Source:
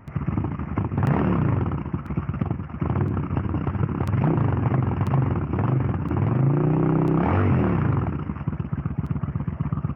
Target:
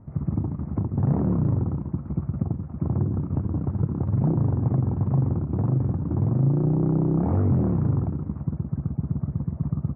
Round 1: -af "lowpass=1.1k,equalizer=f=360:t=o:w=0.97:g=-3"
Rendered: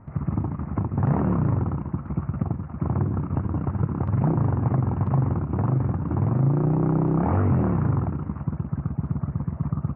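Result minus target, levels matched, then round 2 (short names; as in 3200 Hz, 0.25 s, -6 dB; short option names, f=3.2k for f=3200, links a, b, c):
1000 Hz band +7.0 dB
-af "lowpass=550,equalizer=f=360:t=o:w=0.97:g=-3"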